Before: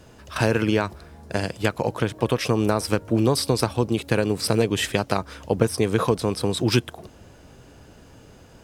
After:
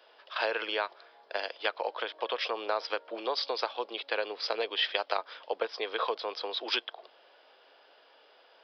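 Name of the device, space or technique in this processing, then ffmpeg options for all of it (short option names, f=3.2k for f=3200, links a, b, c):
musical greeting card: -af "highpass=f=200:w=0.5412,highpass=f=200:w=1.3066,aresample=11025,aresample=44100,highpass=f=530:w=0.5412,highpass=f=530:w=1.3066,equalizer=f=3.3k:t=o:w=0.22:g=7.5,volume=-5dB"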